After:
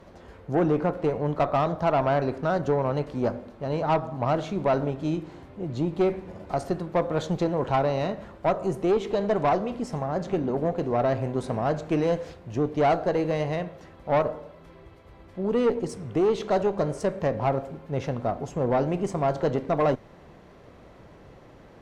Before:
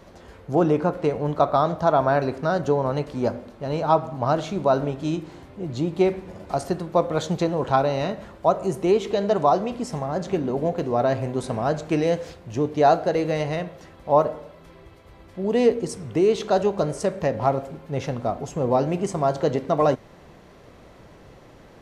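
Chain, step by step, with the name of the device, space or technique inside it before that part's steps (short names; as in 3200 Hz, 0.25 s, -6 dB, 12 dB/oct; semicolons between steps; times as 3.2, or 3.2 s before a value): tube preamp driven hard (tube stage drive 16 dB, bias 0.4; high shelf 3700 Hz -7.5 dB)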